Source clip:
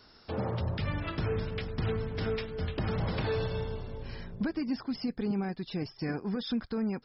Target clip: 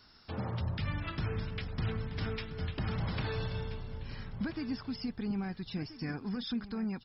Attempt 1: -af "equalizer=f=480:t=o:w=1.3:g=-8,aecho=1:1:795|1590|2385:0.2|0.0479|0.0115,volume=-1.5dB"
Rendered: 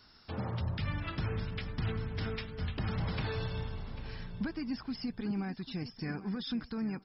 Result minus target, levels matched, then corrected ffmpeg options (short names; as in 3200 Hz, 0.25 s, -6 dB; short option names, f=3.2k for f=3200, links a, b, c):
echo 0.536 s early
-af "equalizer=f=480:t=o:w=1.3:g=-8,aecho=1:1:1331|2662|3993:0.2|0.0479|0.0115,volume=-1.5dB"